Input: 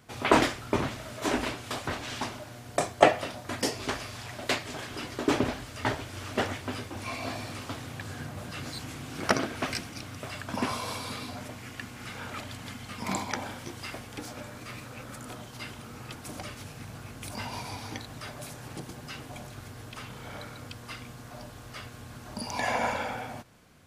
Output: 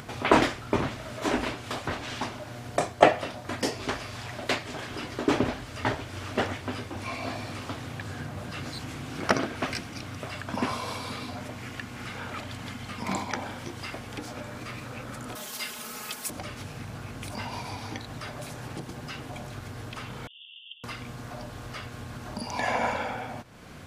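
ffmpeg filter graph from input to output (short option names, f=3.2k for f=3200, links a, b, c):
-filter_complex "[0:a]asettb=1/sr,asplit=3[a][b][c];[a]atrim=end=15.354[d];[b]atrim=start=15.35:end=16.3,asetpts=PTS-STARTPTS,afade=t=in:d=0.004:c=qsin,afade=t=out:st=0.946:d=0.004:c=qsin,aemphasis=mode=production:type=riaa,aecho=1:1:4.7:0.65,atrim=end_sample=41895[e];[c]atrim=start=16.296[f];[d][e]acrossfade=d=0.004:c1=hsin:c2=qsin[g];[g][f]acrossfade=d=0.004:c1=qsin:c2=hsin,asettb=1/sr,asplit=3[h][i][j];[h]atrim=end=20.274[k];[i]atrim=start=20.27:end=20.84,asetpts=PTS-STARTPTS,afade=t=in:d=0.004:c=qsin,afade=t=out:st=0.566:d=0.004:c=qsin,aeval=exprs='abs(val(0))':c=same,asuperpass=centerf=3100:order=20:qfactor=3.5[l];[j]atrim=start=20.836[m];[k][l]acrossfade=d=0.004:c1=hsin:c2=qsin[n];[n][m]acrossfade=d=0.004:c1=qsin:c2=hsin,highshelf=f=6.4k:g=-7.5,acompressor=mode=upward:threshold=-34dB:ratio=2.5,volume=1.5dB"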